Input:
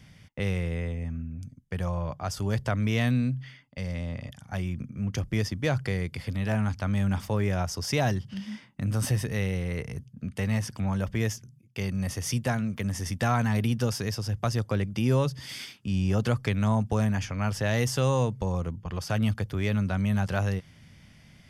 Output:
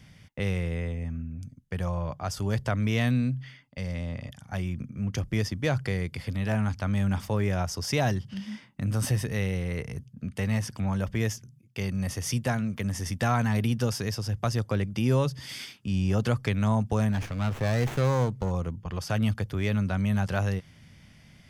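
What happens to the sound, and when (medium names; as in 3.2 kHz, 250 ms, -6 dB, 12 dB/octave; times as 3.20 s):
17.12–18.51 s: sliding maximum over 9 samples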